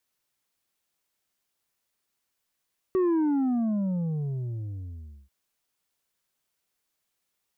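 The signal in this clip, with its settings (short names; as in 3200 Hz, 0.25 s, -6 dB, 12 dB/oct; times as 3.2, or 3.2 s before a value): sub drop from 380 Hz, over 2.34 s, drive 5 dB, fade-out 2.33 s, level -21 dB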